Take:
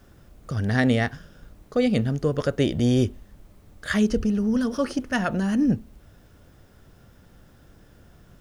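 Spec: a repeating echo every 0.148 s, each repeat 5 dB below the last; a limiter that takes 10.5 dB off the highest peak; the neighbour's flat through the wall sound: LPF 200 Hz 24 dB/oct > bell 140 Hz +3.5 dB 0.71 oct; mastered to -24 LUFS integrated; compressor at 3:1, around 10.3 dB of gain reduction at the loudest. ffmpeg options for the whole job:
-af "acompressor=threshold=-31dB:ratio=3,alimiter=level_in=5dB:limit=-24dB:level=0:latency=1,volume=-5dB,lowpass=f=200:w=0.5412,lowpass=f=200:w=1.3066,equalizer=f=140:t=o:w=0.71:g=3.5,aecho=1:1:148|296|444|592|740|888|1036:0.562|0.315|0.176|0.0988|0.0553|0.031|0.0173,volume=16dB"

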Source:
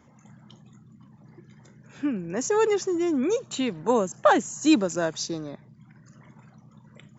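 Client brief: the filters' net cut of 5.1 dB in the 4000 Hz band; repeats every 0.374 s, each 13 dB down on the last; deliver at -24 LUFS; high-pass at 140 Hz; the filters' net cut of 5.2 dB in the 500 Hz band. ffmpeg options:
-af "highpass=140,equalizer=f=500:t=o:g=-6.5,equalizer=f=4k:t=o:g=-6.5,aecho=1:1:374|748|1122:0.224|0.0493|0.0108,volume=4dB"

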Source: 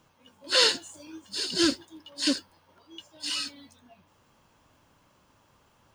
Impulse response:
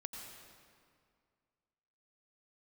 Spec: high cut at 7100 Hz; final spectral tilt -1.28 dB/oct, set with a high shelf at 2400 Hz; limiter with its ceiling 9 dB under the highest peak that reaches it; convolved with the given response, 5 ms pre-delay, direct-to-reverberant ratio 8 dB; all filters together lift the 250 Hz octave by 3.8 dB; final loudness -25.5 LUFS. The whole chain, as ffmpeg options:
-filter_complex "[0:a]lowpass=7.1k,equalizer=f=250:t=o:g=5,highshelf=f=2.4k:g=4,alimiter=limit=-15dB:level=0:latency=1,asplit=2[a][b];[1:a]atrim=start_sample=2205,adelay=5[c];[b][c]afir=irnorm=-1:irlink=0,volume=-5.5dB[d];[a][d]amix=inputs=2:normalize=0,volume=2.5dB"

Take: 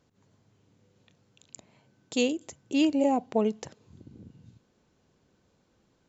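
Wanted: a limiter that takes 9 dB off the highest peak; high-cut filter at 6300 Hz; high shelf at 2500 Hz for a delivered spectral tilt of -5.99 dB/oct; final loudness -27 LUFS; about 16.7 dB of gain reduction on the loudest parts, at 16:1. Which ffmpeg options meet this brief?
-af "lowpass=6.3k,highshelf=f=2.5k:g=-6,acompressor=threshold=-37dB:ratio=16,volume=21dB,alimiter=limit=-14.5dB:level=0:latency=1"

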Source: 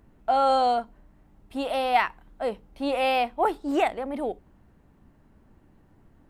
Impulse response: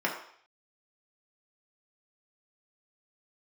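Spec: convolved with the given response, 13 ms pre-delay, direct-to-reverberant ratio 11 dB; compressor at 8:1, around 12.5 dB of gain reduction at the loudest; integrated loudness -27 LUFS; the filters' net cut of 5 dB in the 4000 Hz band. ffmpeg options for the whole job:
-filter_complex "[0:a]equalizer=f=4k:t=o:g=-7,acompressor=threshold=-31dB:ratio=8,asplit=2[a][b];[1:a]atrim=start_sample=2205,adelay=13[c];[b][c]afir=irnorm=-1:irlink=0,volume=-21dB[d];[a][d]amix=inputs=2:normalize=0,volume=8.5dB"

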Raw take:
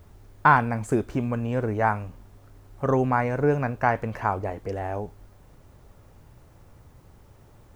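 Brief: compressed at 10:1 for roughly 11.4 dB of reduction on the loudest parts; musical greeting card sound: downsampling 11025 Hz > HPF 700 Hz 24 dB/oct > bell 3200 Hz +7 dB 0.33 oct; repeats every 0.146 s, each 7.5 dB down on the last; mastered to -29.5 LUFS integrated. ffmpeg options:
-af "acompressor=threshold=-23dB:ratio=10,aecho=1:1:146|292|438|584|730:0.422|0.177|0.0744|0.0312|0.0131,aresample=11025,aresample=44100,highpass=f=700:w=0.5412,highpass=f=700:w=1.3066,equalizer=f=3.2k:t=o:w=0.33:g=7,volume=5dB"

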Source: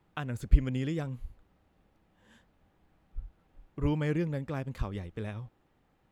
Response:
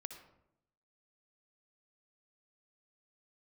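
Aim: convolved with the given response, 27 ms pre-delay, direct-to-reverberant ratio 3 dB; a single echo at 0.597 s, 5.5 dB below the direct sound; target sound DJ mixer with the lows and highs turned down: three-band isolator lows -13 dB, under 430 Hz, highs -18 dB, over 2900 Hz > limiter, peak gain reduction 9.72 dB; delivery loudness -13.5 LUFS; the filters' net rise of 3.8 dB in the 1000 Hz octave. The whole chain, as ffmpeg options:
-filter_complex "[0:a]equalizer=f=1k:t=o:g=5.5,aecho=1:1:597:0.531,asplit=2[a][b];[1:a]atrim=start_sample=2205,adelay=27[c];[b][c]afir=irnorm=-1:irlink=0,volume=0.5dB[d];[a][d]amix=inputs=2:normalize=0,acrossover=split=430 2900:gain=0.224 1 0.126[e][f][g];[e][f][g]amix=inputs=3:normalize=0,volume=28dB,alimiter=limit=-1.5dB:level=0:latency=1"

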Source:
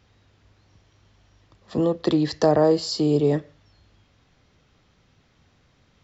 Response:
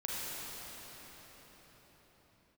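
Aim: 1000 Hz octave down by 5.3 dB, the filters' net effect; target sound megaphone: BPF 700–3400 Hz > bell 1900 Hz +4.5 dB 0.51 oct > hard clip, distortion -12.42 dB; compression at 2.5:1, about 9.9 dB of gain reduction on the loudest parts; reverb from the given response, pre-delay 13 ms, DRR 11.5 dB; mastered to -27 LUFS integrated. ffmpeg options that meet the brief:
-filter_complex "[0:a]equalizer=f=1k:t=o:g=-5,acompressor=threshold=-30dB:ratio=2.5,asplit=2[a][b];[1:a]atrim=start_sample=2205,adelay=13[c];[b][c]afir=irnorm=-1:irlink=0,volume=-16dB[d];[a][d]amix=inputs=2:normalize=0,highpass=700,lowpass=3.4k,equalizer=f=1.9k:t=o:w=0.51:g=4.5,asoftclip=type=hard:threshold=-32.5dB,volume=14dB"

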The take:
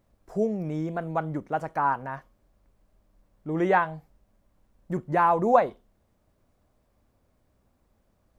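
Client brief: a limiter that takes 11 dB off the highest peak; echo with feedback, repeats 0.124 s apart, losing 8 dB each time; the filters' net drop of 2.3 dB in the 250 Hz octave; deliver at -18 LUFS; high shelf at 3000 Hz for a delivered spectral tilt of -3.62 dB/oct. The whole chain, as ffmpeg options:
-af "equalizer=f=250:t=o:g=-3.5,highshelf=f=3k:g=-8,alimiter=limit=-18dB:level=0:latency=1,aecho=1:1:124|248|372|496|620:0.398|0.159|0.0637|0.0255|0.0102,volume=12dB"

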